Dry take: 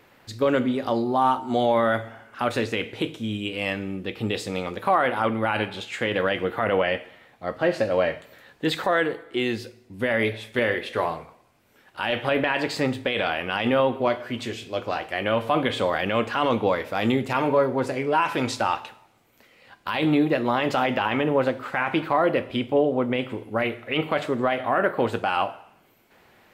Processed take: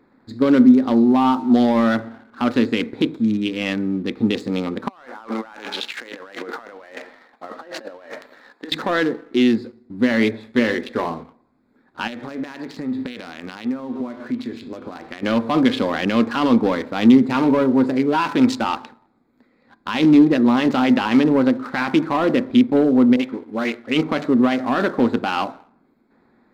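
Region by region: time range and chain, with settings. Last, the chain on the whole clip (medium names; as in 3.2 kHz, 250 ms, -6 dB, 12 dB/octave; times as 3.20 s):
4.88–8.72 s: high-pass 630 Hz + compressor with a negative ratio -37 dBFS
12.07–15.23 s: peaking EQ 3.4 kHz +4.5 dB 1.9 oct + compression 12:1, threshold -31 dBFS + doubling 12 ms -14 dB
23.16–23.87 s: high-pass 410 Hz 6 dB/octave + phase dispersion highs, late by 42 ms, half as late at 1.1 kHz
whole clip: local Wiener filter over 15 samples; waveshaping leveller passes 1; fifteen-band graphic EQ 100 Hz -7 dB, 250 Hz +12 dB, 630 Hz -5 dB, 4 kHz +5 dB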